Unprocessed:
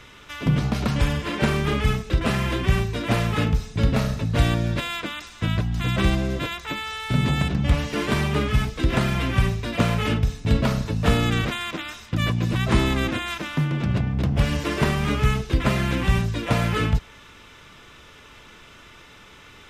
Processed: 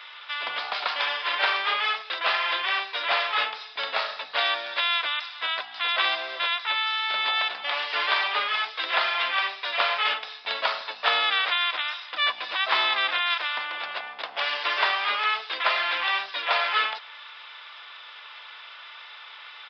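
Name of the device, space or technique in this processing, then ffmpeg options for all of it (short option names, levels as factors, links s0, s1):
musical greeting card: -af "aresample=11025,aresample=44100,highpass=f=750:w=0.5412,highpass=f=750:w=1.3066,equalizer=f=3500:t=o:w=0.22:g=4.5,volume=1.68"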